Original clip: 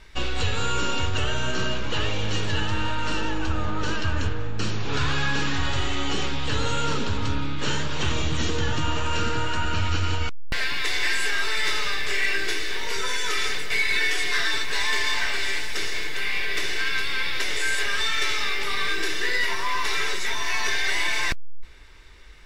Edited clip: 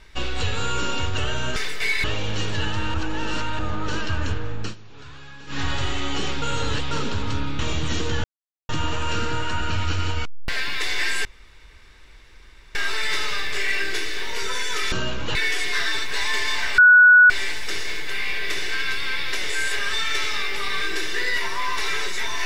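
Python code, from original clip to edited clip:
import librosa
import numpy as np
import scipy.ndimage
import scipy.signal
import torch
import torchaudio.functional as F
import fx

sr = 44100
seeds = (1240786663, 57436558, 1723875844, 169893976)

y = fx.edit(x, sr, fx.swap(start_s=1.56, length_s=0.43, other_s=13.46, other_length_s=0.48),
    fx.reverse_span(start_s=2.89, length_s=0.65),
    fx.fade_down_up(start_s=4.57, length_s=0.98, db=-18.0, fade_s=0.13),
    fx.reverse_span(start_s=6.37, length_s=0.49),
    fx.cut(start_s=7.54, length_s=0.54),
    fx.insert_silence(at_s=8.73, length_s=0.45),
    fx.insert_room_tone(at_s=11.29, length_s=1.5),
    fx.insert_tone(at_s=15.37, length_s=0.52, hz=1470.0, db=-7.5), tone=tone)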